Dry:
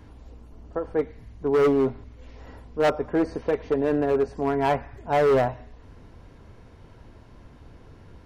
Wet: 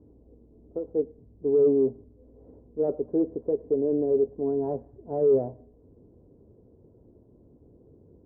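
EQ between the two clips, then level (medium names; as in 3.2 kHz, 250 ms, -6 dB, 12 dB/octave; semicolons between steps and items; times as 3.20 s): high-pass 130 Hz 6 dB/octave; four-pole ladder low-pass 520 Hz, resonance 40%; +3.5 dB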